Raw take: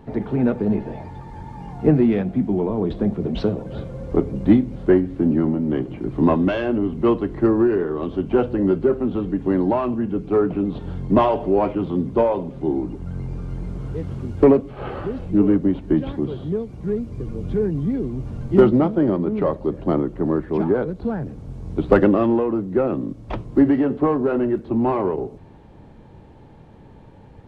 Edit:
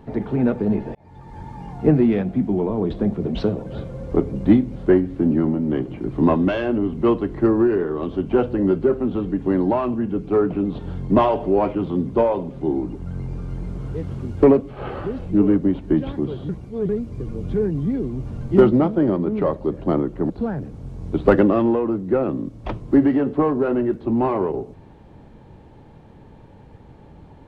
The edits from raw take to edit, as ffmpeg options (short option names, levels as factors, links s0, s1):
-filter_complex "[0:a]asplit=5[s0][s1][s2][s3][s4];[s0]atrim=end=0.95,asetpts=PTS-STARTPTS,afade=t=out:st=0.946:d=0.004:c=hsin[s5];[s1]atrim=start=0.95:end=16.492,asetpts=PTS-STARTPTS,afade=t=in:d=0.47[s6];[s2]atrim=start=16.488:end=16.892,asetpts=PTS-STARTPTS,areverse[s7];[s3]atrim=start=16.888:end=20.302[s8];[s4]atrim=start=20.938[s9];[s5][s6]concat=n=2:v=0:a=1[s10];[s10][s7]acrossfade=d=0.004:c1=hsin:c2=hsin[s11];[s11][s8]acrossfade=d=0.004:c1=hsin:c2=hsin[s12];[s12][s9]acrossfade=d=0.004:c1=hsin:c2=hsin"